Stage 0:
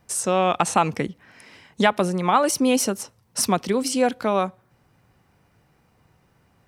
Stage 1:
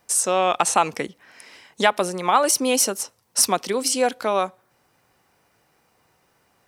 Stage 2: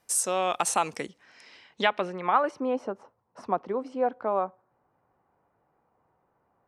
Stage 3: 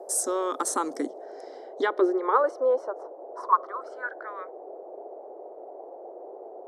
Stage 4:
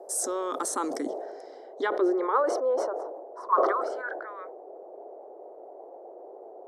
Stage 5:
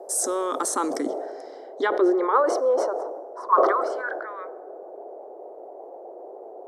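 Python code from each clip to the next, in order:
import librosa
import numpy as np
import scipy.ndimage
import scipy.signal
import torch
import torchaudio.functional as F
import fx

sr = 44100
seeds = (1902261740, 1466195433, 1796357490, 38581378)

y1 = fx.bass_treble(x, sr, bass_db=-13, treble_db=5)
y1 = y1 * librosa.db_to_amplitude(1.0)
y2 = fx.filter_sweep_lowpass(y1, sr, from_hz=13000.0, to_hz=1000.0, start_s=0.67, end_s=2.78, q=1.3)
y2 = y2 * librosa.db_to_amplitude(-7.0)
y3 = fx.filter_sweep_highpass(y2, sr, from_hz=270.0, to_hz=2500.0, start_s=1.64, end_s=4.71, q=6.6)
y3 = fx.fixed_phaser(y3, sr, hz=700.0, stages=6)
y3 = fx.dmg_noise_band(y3, sr, seeds[0], low_hz=360.0, high_hz=750.0, level_db=-42.0)
y4 = fx.sustainer(y3, sr, db_per_s=37.0)
y4 = y4 * librosa.db_to_amplitude(-3.5)
y5 = fx.rev_plate(y4, sr, seeds[1], rt60_s=1.7, hf_ratio=0.6, predelay_ms=0, drr_db=19.5)
y5 = y5 * librosa.db_to_amplitude(4.5)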